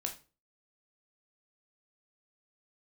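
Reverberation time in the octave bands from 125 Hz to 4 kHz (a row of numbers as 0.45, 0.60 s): 0.45, 0.40, 0.35, 0.30, 0.30, 0.30 s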